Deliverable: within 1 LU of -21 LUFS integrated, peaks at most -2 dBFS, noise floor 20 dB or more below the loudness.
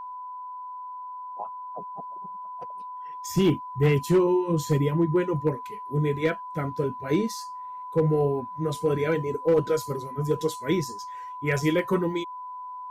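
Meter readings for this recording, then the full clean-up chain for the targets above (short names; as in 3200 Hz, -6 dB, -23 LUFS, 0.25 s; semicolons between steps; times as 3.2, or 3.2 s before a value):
clipped 0.4%; flat tops at -14.5 dBFS; steady tone 1000 Hz; tone level -35 dBFS; loudness -26.0 LUFS; peak -14.5 dBFS; loudness target -21.0 LUFS
-> clip repair -14.5 dBFS; notch 1000 Hz, Q 30; gain +5 dB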